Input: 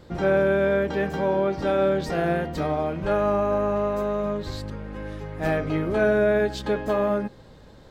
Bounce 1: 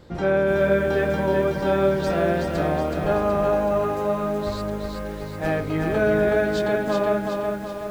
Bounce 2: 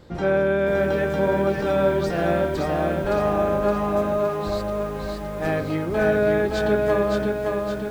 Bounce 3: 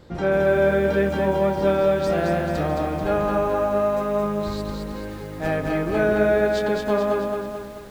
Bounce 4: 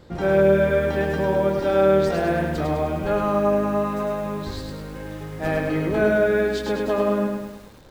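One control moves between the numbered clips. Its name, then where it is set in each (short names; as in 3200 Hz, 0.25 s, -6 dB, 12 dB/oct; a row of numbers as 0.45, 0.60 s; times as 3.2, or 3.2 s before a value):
lo-fi delay, time: 0.373, 0.566, 0.218, 0.103 s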